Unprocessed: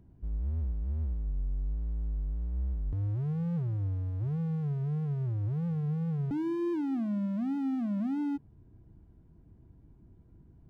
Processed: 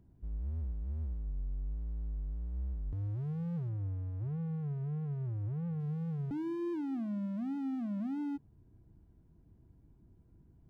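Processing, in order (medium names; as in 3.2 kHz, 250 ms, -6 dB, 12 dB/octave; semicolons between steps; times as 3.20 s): 3.69–5.80 s: low-pass 2.8 kHz 12 dB/octave; trim -5 dB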